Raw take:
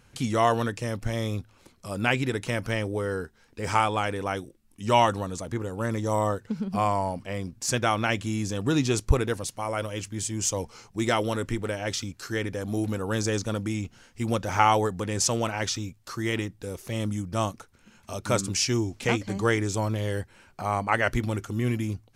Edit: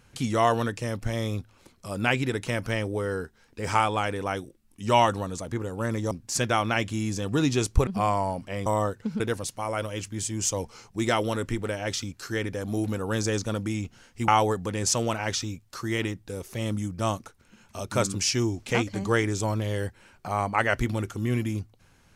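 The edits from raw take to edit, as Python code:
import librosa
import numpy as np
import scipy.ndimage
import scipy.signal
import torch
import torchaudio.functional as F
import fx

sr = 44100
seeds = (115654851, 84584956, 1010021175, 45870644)

y = fx.edit(x, sr, fx.swap(start_s=6.11, length_s=0.54, other_s=7.44, other_length_s=1.76),
    fx.cut(start_s=14.28, length_s=0.34), tone=tone)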